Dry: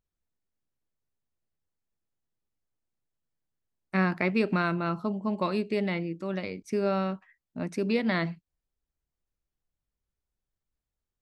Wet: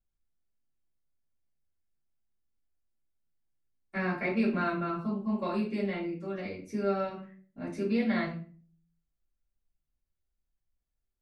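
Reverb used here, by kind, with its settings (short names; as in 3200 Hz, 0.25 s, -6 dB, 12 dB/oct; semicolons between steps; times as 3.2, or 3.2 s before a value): shoebox room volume 31 m³, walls mixed, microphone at 2.2 m; gain -17 dB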